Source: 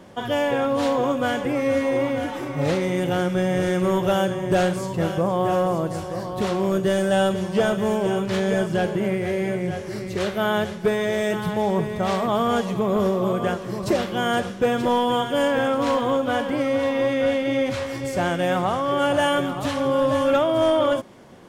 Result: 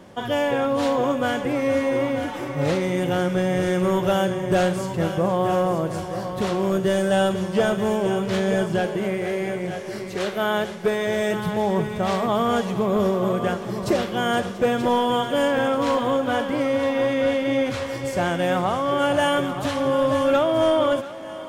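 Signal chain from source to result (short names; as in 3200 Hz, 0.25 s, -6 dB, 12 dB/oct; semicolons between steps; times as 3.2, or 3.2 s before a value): 8.8–11.07 bell 73 Hz -12.5 dB 1.7 oct; thinning echo 0.685 s, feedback 77%, high-pass 180 Hz, level -17.5 dB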